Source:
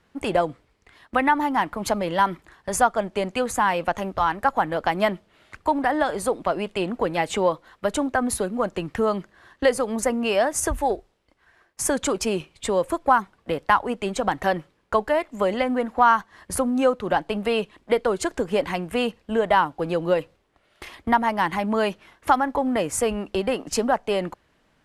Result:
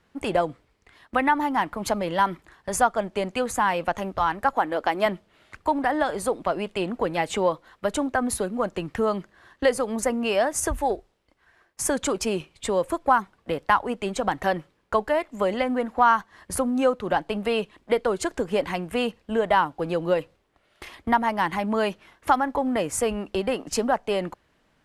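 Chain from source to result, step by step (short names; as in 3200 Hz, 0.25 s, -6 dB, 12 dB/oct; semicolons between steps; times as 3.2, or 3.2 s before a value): 4.53–5.06 resonant low shelf 220 Hz -7.5 dB, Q 1.5; gain -1.5 dB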